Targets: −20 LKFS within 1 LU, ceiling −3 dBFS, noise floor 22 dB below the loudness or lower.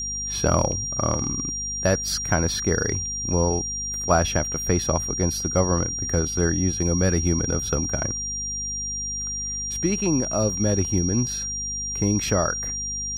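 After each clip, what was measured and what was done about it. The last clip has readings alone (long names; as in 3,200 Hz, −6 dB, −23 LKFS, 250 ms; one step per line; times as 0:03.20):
mains hum 50 Hz; hum harmonics up to 250 Hz; level of the hum −36 dBFS; interfering tone 5,700 Hz; level of the tone −27 dBFS; integrated loudness −23.5 LKFS; sample peak −6.0 dBFS; target loudness −20.0 LKFS
→ mains-hum notches 50/100/150/200/250 Hz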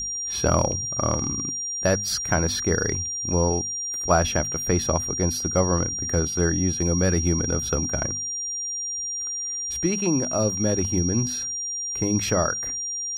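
mains hum none found; interfering tone 5,700 Hz; level of the tone −27 dBFS
→ notch filter 5,700 Hz, Q 30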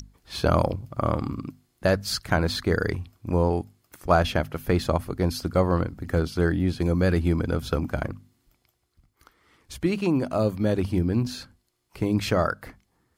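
interfering tone none found; integrated loudness −25.5 LKFS; sample peak −7.0 dBFS; target loudness −20.0 LKFS
→ level +5.5 dB
brickwall limiter −3 dBFS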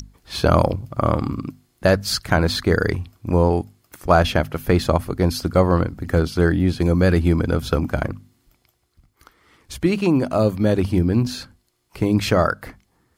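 integrated loudness −20.0 LKFS; sample peak −3.0 dBFS; background noise floor −66 dBFS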